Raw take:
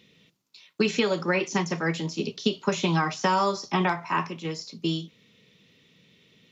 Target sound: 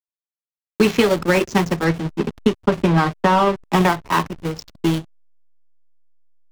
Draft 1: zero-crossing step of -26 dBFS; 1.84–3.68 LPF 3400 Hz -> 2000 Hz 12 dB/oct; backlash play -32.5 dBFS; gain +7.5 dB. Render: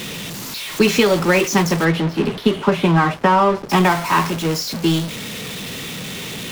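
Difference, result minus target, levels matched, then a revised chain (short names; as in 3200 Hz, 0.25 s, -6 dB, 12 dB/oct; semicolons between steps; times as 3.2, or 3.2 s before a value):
backlash: distortion -11 dB
zero-crossing step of -26 dBFS; 1.84–3.68 LPF 3400 Hz -> 2000 Hz 12 dB/oct; backlash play -21 dBFS; gain +7.5 dB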